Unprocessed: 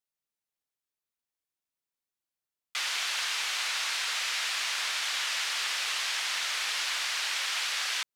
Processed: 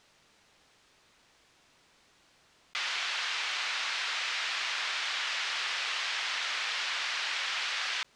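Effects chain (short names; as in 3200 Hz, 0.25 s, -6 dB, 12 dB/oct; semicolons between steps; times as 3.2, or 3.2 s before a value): air absorption 110 m; fast leveller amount 50%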